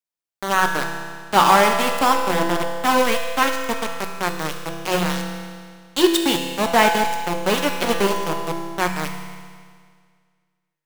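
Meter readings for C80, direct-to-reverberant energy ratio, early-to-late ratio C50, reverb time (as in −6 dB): 5.5 dB, 2.0 dB, 4.0 dB, 1.9 s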